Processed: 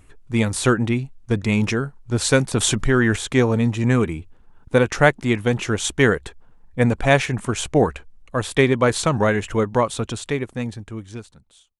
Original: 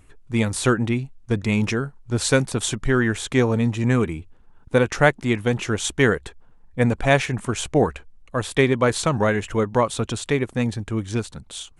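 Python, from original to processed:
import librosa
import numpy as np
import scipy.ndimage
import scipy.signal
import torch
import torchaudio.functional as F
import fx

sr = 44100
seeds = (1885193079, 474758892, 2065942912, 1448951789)

y = fx.fade_out_tail(x, sr, length_s=2.24)
y = fx.env_flatten(y, sr, amount_pct=50, at=(2.53, 3.16))
y = y * librosa.db_to_amplitude(1.5)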